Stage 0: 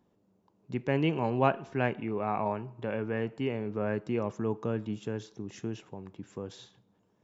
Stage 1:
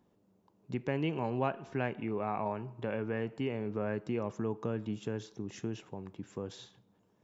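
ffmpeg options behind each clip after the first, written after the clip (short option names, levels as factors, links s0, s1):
-af "acompressor=threshold=0.0251:ratio=2"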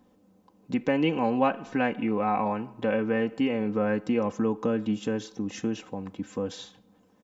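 -af "aecho=1:1:3.9:0.71,volume=2.24"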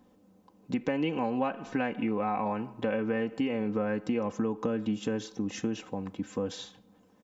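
-af "acompressor=threshold=0.0501:ratio=4"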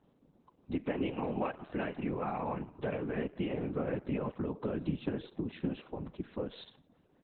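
-af "afftfilt=real='hypot(re,im)*cos(2*PI*random(0))':imag='hypot(re,im)*sin(2*PI*random(1))':win_size=512:overlap=0.75,volume=1.26" -ar 48000 -c:a libopus -b:a 8k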